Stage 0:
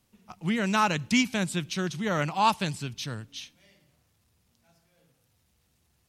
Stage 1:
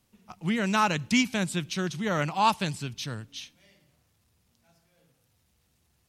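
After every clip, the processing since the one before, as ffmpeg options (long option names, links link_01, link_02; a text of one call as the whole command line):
ffmpeg -i in.wav -af anull out.wav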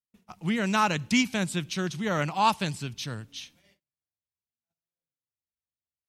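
ffmpeg -i in.wav -af "agate=range=-36dB:threshold=-58dB:ratio=16:detection=peak" out.wav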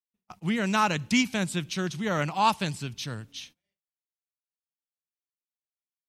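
ffmpeg -i in.wav -af "agate=range=-23dB:threshold=-49dB:ratio=16:detection=peak" out.wav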